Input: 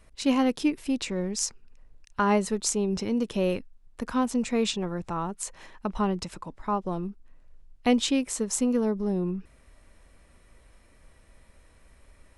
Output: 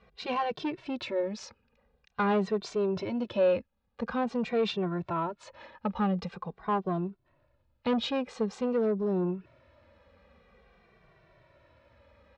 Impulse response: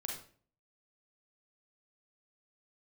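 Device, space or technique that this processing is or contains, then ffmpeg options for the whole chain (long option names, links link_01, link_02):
barber-pole flanger into a guitar amplifier: -filter_complex "[0:a]asplit=2[link_01][link_02];[link_02]adelay=2.1,afreqshift=-0.47[link_03];[link_01][link_03]amix=inputs=2:normalize=1,asoftclip=type=tanh:threshold=-25dB,highpass=96,equalizer=frequency=280:width_type=q:width=4:gain=-9,equalizer=frequency=550:width_type=q:width=4:gain=4,equalizer=frequency=2000:width_type=q:width=4:gain=-4,equalizer=frequency=3000:width_type=q:width=4:gain=-4,lowpass=frequency=3800:width=0.5412,lowpass=frequency=3800:width=1.3066,volume=4.5dB"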